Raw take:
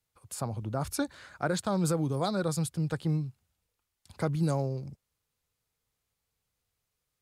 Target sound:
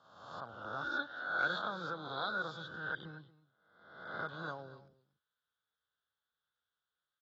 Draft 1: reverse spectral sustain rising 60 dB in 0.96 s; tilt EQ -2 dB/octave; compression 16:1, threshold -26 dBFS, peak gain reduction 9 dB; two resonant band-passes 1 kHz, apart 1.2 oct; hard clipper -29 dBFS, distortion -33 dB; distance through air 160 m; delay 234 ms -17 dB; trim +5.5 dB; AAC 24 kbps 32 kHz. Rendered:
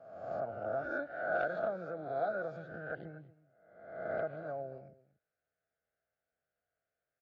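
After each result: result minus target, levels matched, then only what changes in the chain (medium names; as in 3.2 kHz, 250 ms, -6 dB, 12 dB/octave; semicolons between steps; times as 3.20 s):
compression: peak gain reduction +9 dB; 2 kHz band -5.0 dB
remove: compression 16:1, threshold -26 dBFS, peak gain reduction 9 dB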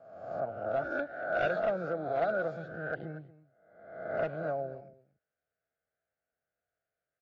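2 kHz band -5.5 dB
change: two resonant band-passes 2.3 kHz, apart 1.2 oct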